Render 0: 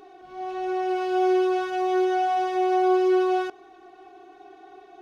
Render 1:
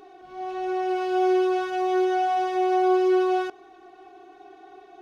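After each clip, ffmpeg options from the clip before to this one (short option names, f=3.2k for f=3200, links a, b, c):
-af anull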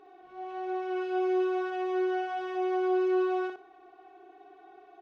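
-af "bass=f=250:g=-7,treble=f=4k:g=-12,aecho=1:1:60|120|180:0.596|0.0953|0.0152,volume=-6.5dB"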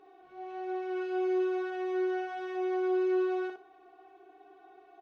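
-filter_complex "[0:a]asplit=2[a][b];[b]adelay=13,volume=-8.5dB[c];[a][c]amix=inputs=2:normalize=0,volume=-3dB"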